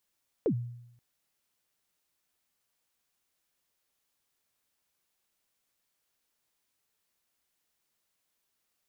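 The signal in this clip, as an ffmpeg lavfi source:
ffmpeg -f lavfi -i "aevalsrc='0.0841*pow(10,-3*t/0.81)*sin(2*PI*(520*0.079/log(120/520)*(exp(log(120/520)*min(t,0.079)/0.079)-1)+120*max(t-0.079,0)))':duration=0.53:sample_rate=44100" out.wav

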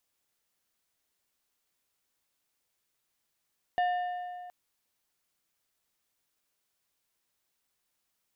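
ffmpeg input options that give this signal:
ffmpeg -f lavfi -i "aevalsrc='0.0668*pow(10,-3*t/2.26)*sin(2*PI*717*t)+0.0211*pow(10,-3*t/1.717)*sin(2*PI*1792.5*t)+0.00668*pow(10,-3*t/1.491)*sin(2*PI*2868*t)+0.00211*pow(10,-3*t/1.394)*sin(2*PI*3585*t)+0.000668*pow(10,-3*t/1.289)*sin(2*PI*4660.5*t)':duration=0.72:sample_rate=44100" out.wav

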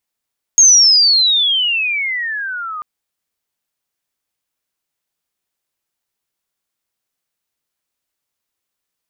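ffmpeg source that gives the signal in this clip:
ffmpeg -f lavfi -i "aevalsrc='pow(10,(-4-19*t/2.24)/20)*sin(2*PI*6600*2.24/log(1200/6600)*(exp(log(1200/6600)*t/2.24)-1))':duration=2.24:sample_rate=44100" out.wav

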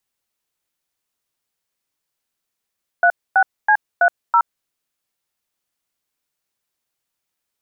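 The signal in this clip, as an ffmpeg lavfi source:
ffmpeg -f lavfi -i "aevalsrc='0.237*clip(min(mod(t,0.327),0.071-mod(t,0.327))/0.002,0,1)*(eq(floor(t/0.327),0)*(sin(2*PI*697*mod(t,0.327))+sin(2*PI*1477*mod(t,0.327)))+eq(floor(t/0.327),1)*(sin(2*PI*770*mod(t,0.327))+sin(2*PI*1477*mod(t,0.327)))+eq(floor(t/0.327),2)*(sin(2*PI*852*mod(t,0.327))+sin(2*PI*1633*mod(t,0.327)))+eq(floor(t/0.327),3)*(sin(2*PI*697*mod(t,0.327))+sin(2*PI*1477*mod(t,0.327)))+eq(floor(t/0.327),4)*(sin(2*PI*941*mod(t,0.327))+sin(2*PI*1336*mod(t,0.327))))':duration=1.635:sample_rate=44100" out.wav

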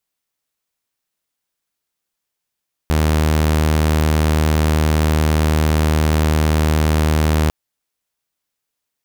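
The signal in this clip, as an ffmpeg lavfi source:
ffmpeg -f lavfi -i "aevalsrc='0.299*(2*mod(77.4*t,1)-1)':duration=4.6:sample_rate=44100" out.wav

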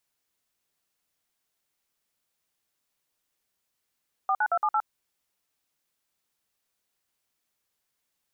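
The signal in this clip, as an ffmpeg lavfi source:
ffmpeg -f lavfi -i "aevalsrc='0.0631*clip(min(mod(t,0.113),0.06-mod(t,0.113))/0.002,0,1)*(eq(floor(t/0.113),0)*(sin(2*PI*770*mod(t,0.113))+sin(2*PI*1209*mod(t,0.113)))+eq(floor(t/0.113),1)*(sin(2*PI*852*mod(t,0.113))+sin(2*PI*1477*mod(t,0.113)))+eq(floor(t/0.113),2)*(sin(2*PI*697*mod(t,0.113))+sin(2*PI*1336*mod(t,0.113)))+eq(floor(t/0.113),3)*(sin(2*PI*852*mod(t,0.113))+sin(2*PI*1209*mod(t,0.113)))+eq(floor(t/0.113),4)*(sin(2*PI*852*mod(t,0.113))+sin(2*PI*1336*mod(t,0.113))))':duration=0.565:sample_rate=44100" out.wav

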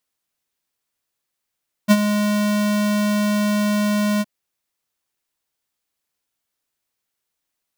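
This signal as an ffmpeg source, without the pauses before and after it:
ffmpeg -f lavfi -i "aevalsrc='0.335*(2*lt(mod(208*t,1),0.5)-1)':duration=2.365:sample_rate=44100,afade=type=in:duration=0.032,afade=type=out:start_time=0.032:duration=0.047:silence=0.335,afade=type=out:start_time=2.33:duration=0.035" out.wav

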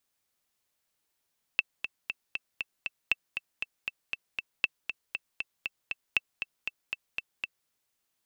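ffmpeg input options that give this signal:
ffmpeg -f lavfi -i "aevalsrc='pow(10,(-10-8.5*gte(mod(t,6*60/236),60/236))/20)*sin(2*PI*2660*mod(t,60/236))*exp(-6.91*mod(t,60/236)/0.03)':duration=6.1:sample_rate=44100" out.wav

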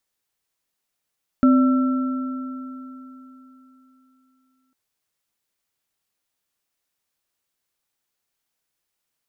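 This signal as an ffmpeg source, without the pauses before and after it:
ffmpeg -f lavfi -i "aevalsrc='0.299*pow(10,-3*t/3.47)*sin(2*PI*259*t)+0.0562*pow(10,-3*t/2.61)*sin(2*PI*583*t)+0.0708*pow(10,-3*t/3.88)*sin(2*PI*1340*t)':duration=3.3:sample_rate=44100" out.wav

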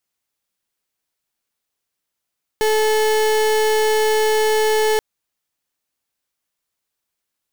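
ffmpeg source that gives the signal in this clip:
ffmpeg -f lavfi -i "aevalsrc='0.15*(2*lt(mod(433*t,1),0.35)-1)':duration=2.38:sample_rate=44100" out.wav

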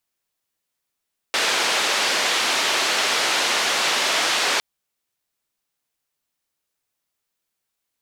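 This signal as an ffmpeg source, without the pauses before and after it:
ffmpeg -f lavfi -i "anoisesrc=color=white:duration=3.26:sample_rate=44100:seed=1,highpass=frequency=390,lowpass=frequency=4400,volume=-9.1dB" out.wav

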